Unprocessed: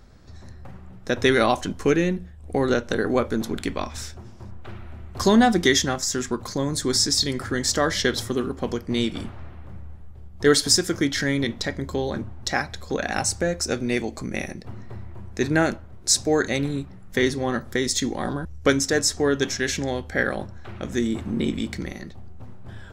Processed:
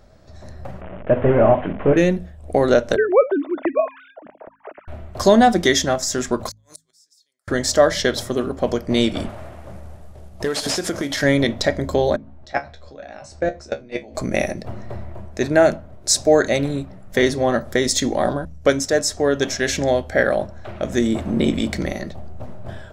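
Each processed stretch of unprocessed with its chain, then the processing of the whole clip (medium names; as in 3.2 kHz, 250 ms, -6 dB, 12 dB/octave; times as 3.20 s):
0.81–1.97 s: one-bit delta coder 16 kbps, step -33 dBFS + distance through air 340 m + hum notches 50/100/150/200/250/300/350/400/450/500 Hz
2.96–4.88 s: formants replaced by sine waves + low-pass 2.5 kHz 24 dB/octave
6.49–7.48 s: differentiator + inverted gate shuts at -29 dBFS, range -40 dB
9.29–11.23 s: CVSD coder 64 kbps + bass shelf 130 Hz -7 dB + compression 16:1, threshold -26 dBFS
12.16–14.15 s: low-pass 4.5 kHz + level held to a coarse grid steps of 22 dB + feedback comb 70 Hz, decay 0.16 s, mix 90%
whole clip: peaking EQ 620 Hz +13 dB 0.42 oct; de-hum 53.41 Hz, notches 5; level rider gain up to 8 dB; trim -1 dB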